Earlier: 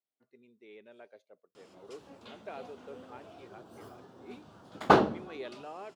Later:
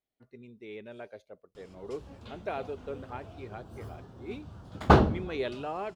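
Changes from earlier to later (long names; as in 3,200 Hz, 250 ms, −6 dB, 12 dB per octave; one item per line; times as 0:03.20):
speech +8.5 dB
master: remove high-pass filter 250 Hz 12 dB per octave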